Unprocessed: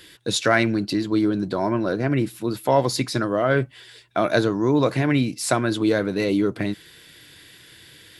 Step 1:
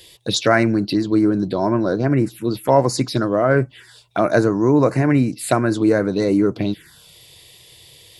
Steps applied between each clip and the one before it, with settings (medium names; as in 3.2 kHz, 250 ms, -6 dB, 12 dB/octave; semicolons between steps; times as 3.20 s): touch-sensitive phaser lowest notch 230 Hz, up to 3.4 kHz, full sweep at -18 dBFS; trim +4.5 dB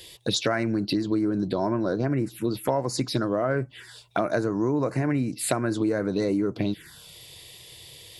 compression 5:1, threshold -22 dBFS, peak gain reduction 12.5 dB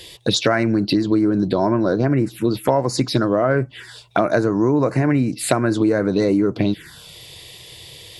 treble shelf 9.1 kHz -8 dB; trim +7.5 dB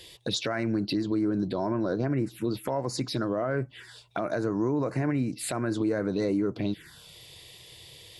peak limiter -9.5 dBFS, peak gain reduction 8 dB; trim -9 dB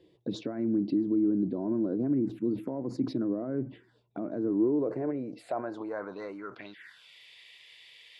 band-pass sweep 270 Hz -> 2.2 kHz, 4.40–7.03 s; decay stretcher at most 150 dB/s; trim +3.5 dB